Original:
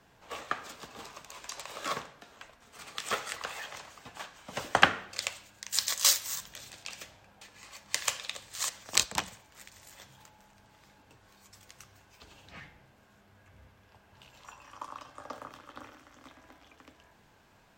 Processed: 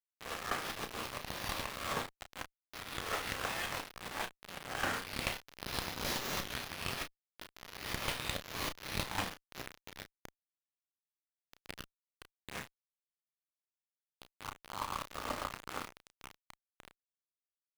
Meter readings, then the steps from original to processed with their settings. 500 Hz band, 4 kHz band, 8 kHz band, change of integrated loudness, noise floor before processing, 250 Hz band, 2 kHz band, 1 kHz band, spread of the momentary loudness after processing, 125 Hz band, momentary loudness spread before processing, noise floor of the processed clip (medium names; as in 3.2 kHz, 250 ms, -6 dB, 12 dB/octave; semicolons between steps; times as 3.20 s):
-1.0 dB, -6.5 dB, -12.5 dB, -8.0 dB, -62 dBFS, +2.0 dB, -5.0 dB, -3.5 dB, 16 LU, +4.5 dB, 25 LU, under -85 dBFS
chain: reverse spectral sustain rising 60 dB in 0.66 s; reverse; compression 20:1, threshold -38 dBFS, peak gain reduction 27 dB; reverse; small samples zeroed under -40.5 dBFS; doubling 32 ms -8.5 dB; sliding maximum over 5 samples; trim +5.5 dB